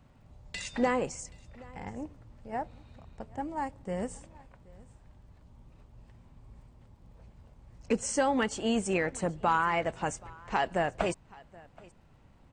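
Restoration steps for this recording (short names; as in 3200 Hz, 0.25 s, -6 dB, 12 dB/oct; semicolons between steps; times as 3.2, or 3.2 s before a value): clip repair -16.5 dBFS; de-click; inverse comb 0.776 s -23.5 dB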